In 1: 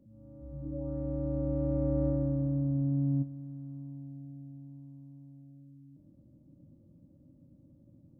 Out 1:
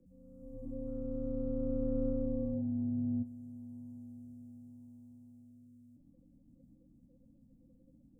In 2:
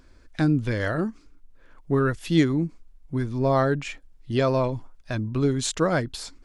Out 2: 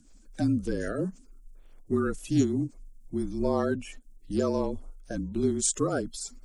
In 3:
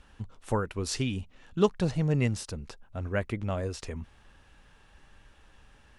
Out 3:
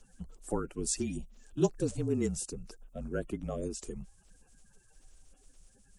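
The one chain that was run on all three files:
spectral magnitudes quantised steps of 30 dB
graphic EQ with 10 bands 125 Hz −10 dB, 1,000 Hz −9 dB, 2,000 Hz −10 dB, 4,000 Hz −9 dB, 8,000 Hz +8 dB
frequency shifter −34 Hz

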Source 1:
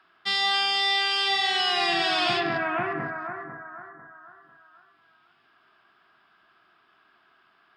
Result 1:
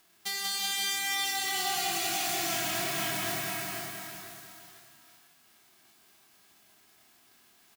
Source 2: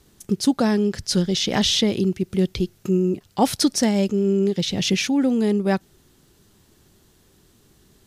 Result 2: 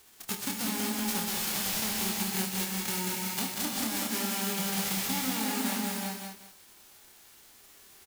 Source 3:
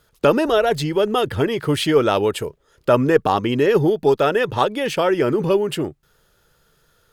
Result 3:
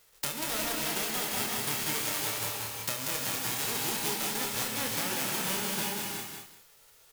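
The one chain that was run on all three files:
spectral envelope flattened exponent 0.1
mains-hum notches 50/100/150 Hz
downward compressor 16 to 1, threshold −29 dBFS
ambience of single reflections 27 ms −6 dB, 73 ms −13 dB
reverb whose tail is shaped and stops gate 400 ms rising, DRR 1 dB
feedback echo at a low word length 189 ms, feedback 35%, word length 8 bits, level −3.5 dB
level −3 dB

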